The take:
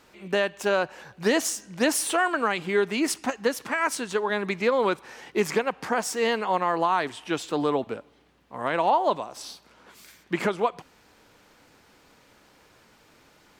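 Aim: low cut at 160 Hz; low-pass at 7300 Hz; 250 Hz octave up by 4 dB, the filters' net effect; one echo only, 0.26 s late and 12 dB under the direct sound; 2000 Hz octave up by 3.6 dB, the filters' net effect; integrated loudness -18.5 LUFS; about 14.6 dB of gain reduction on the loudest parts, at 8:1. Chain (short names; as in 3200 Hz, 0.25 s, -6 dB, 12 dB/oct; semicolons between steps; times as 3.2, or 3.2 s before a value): HPF 160 Hz; LPF 7300 Hz; bell 250 Hz +6 dB; bell 2000 Hz +4.5 dB; compressor 8:1, threshold -31 dBFS; echo 0.26 s -12 dB; gain +17 dB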